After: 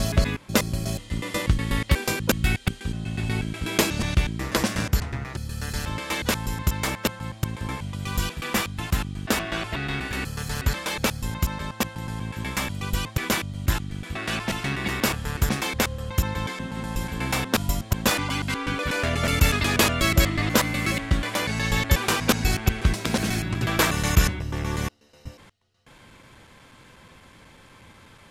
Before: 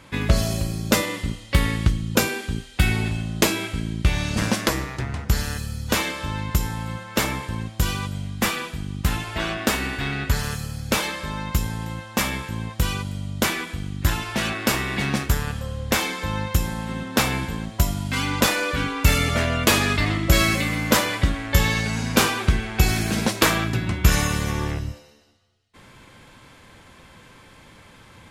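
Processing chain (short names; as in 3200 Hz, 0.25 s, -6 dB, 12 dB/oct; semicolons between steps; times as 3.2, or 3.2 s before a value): slices in reverse order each 0.122 s, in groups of 4; gain -2 dB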